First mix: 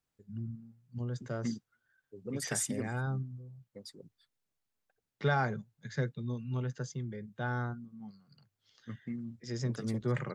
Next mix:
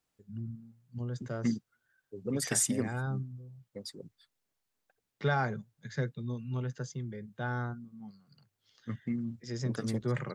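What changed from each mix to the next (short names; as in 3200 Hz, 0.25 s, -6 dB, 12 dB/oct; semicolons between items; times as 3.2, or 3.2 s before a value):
second voice +5.5 dB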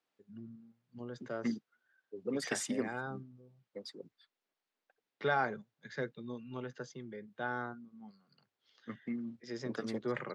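master: add three-band isolator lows -21 dB, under 220 Hz, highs -17 dB, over 5000 Hz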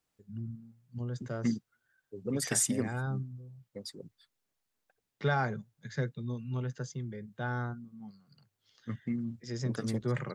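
master: remove three-band isolator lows -21 dB, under 220 Hz, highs -17 dB, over 5000 Hz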